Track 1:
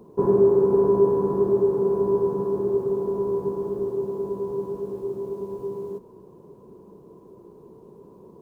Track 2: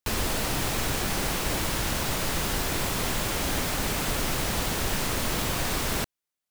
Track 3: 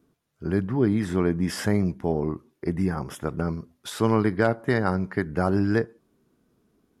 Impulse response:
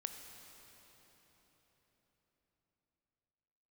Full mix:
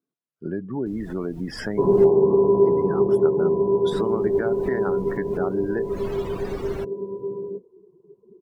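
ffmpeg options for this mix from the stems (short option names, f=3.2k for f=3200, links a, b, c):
-filter_complex "[0:a]adelay=1600,volume=1.5dB[a];[1:a]adelay=800,volume=-3dB,asplit=3[b][c][d];[b]atrim=end=2.1,asetpts=PTS-STARTPTS,afade=t=out:st=2.096:d=0.004:c=hsin[e];[c]atrim=start=2.1:end=3.91,asetpts=PTS-STARTPTS,volume=0[f];[d]atrim=start=3.91,asetpts=PTS-STARTPTS,afade=t=in:d=0.004:c=hsin[g];[e][f][g]concat=n=3:v=0:a=1[h];[2:a]highpass=190,acompressor=threshold=-29dB:ratio=3,volume=3dB,asplit=2[i][j];[j]apad=whole_len=322155[k];[h][k]sidechaincompress=threshold=-34dB:ratio=12:attack=7.5:release=197[l];[a][l][i]amix=inputs=3:normalize=0,afftdn=nr=23:nf=-32"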